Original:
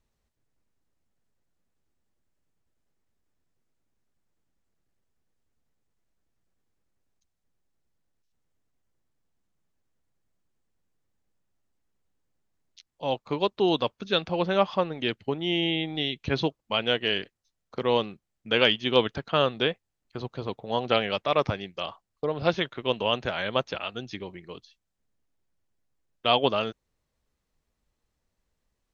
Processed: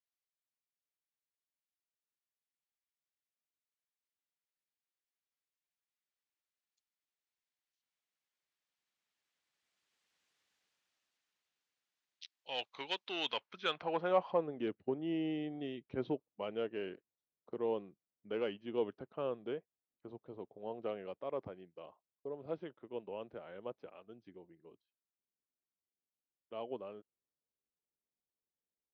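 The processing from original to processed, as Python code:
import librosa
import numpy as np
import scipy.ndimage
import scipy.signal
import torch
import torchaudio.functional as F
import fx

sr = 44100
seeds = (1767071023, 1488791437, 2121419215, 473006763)

y = fx.doppler_pass(x, sr, speed_mps=21, closest_m=11.0, pass_at_s=10.3)
y = 10.0 ** (-30.0 / 20.0) * np.tanh(y / 10.0 ** (-30.0 / 20.0))
y = fx.filter_sweep_bandpass(y, sr, from_hz=3200.0, to_hz=400.0, start_s=13.12, end_s=14.55, q=0.91)
y = y * librosa.db_to_amplitude(12.5)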